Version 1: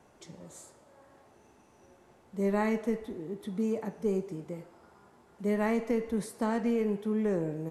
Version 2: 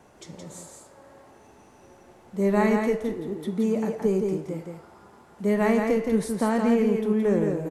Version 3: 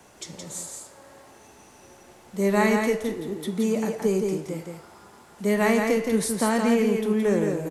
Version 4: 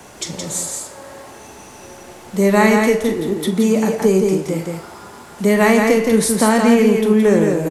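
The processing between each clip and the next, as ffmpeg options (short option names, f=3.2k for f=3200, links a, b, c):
-af "aecho=1:1:170:0.596,volume=6dB"
-filter_complex "[0:a]highshelf=f=2.1k:g=10.5,acrossover=split=130|990[a][b][c];[a]alimiter=level_in=17dB:limit=-24dB:level=0:latency=1,volume=-17dB[d];[d][b][c]amix=inputs=3:normalize=0"
-filter_complex "[0:a]asplit=2[a][b];[b]acompressor=threshold=-30dB:ratio=6,volume=-1dB[c];[a][c]amix=inputs=2:normalize=0,asplit=2[d][e];[e]adelay=42,volume=-13dB[f];[d][f]amix=inputs=2:normalize=0,volume=6.5dB"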